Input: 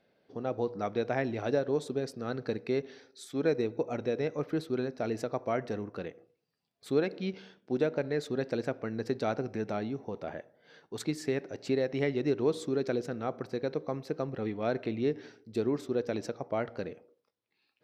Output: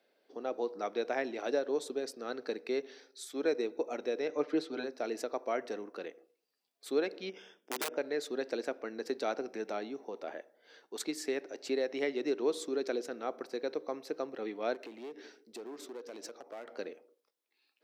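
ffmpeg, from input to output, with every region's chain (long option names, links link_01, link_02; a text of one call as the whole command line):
ffmpeg -i in.wav -filter_complex "[0:a]asettb=1/sr,asplit=3[link_01][link_02][link_03];[link_01]atrim=end=4.284[link_04];[link_02]atrim=start=4.28:end=4.84,asetpts=PTS-STARTPTS,afade=type=in:duration=0.004:curve=qsin,afade=type=out:start_time=0.556:duration=0.004:curve=qsin,lowpass=5700,aecho=1:1:6.7:0.91,atrim=end_sample=24696[link_05];[link_03]atrim=start=4.836[link_06];[link_04][link_05]acrossfade=duration=0.004:curve1=hsin:curve2=qsin[link_07];[link_07][link_06]acrossfade=duration=0.004:curve1=qsin:curve2=hsin,asettb=1/sr,asplit=3[link_08][link_09][link_10];[link_08]atrim=end=7.294[link_11];[link_09]atrim=start=7.29:end=7.97,asetpts=PTS-STARTPTS,afade=type=in:duration=0.004:curve=qsin,afade=type=out:start_time=0.676:duration=0.004:curve=qsin,asuperstop=centerf=4200:order=20:qfactor=3.8,aeval=exprs='(mod(14.1*val(0)+1,2)-1)/14.1':channel_layout=same,acompressor=threshold=-31dB:ratio=6:attack=3.2:release=140:knee=1:detection=peak[link_12];[link_10]atrim=start=7.966[link_13];[link_11][link_12]acrossfade=duration=0.004:curve1=hsin:curve2=qsin[link_14];[link_14][link_13]acrossfade=duration=0.004:curve1=qsin:curve2=hsin,asettb=1/sr,asplit=3[link_15][link_16][link_17];[link_15]atrim=end=14.744[link_18];[link_16]atrim=start=14.74:end=16.69,asetpts=PTS-STARTPTS,afade=type=in:duration=0.004:curve=qsin,afade=type=out:start_time=1.946:duration=0.004:curve=qsin,acompressor=threshold=-38dB:ratio=3:attack=3.2:release=140:knee=1:detection=peak,aeval=exprs='clip(val(0),-1,0.0119)':channel_layout=same[link_19];[link_17]atrim=start=16.686[link_20];[link_18][link_19]acrossfade=duration=0.004:curve1=hsin:curve2=qsin[link_21];[link_21][link_20]acrossfade=duration=0.004:curve1=qsin:curve2=hsin,highpass=frequency=280:width=0.5412,highpass=frequency=280:width=1.3066,highshelf=frequency=4200:gain=7,volume=-2.5dB" out.wav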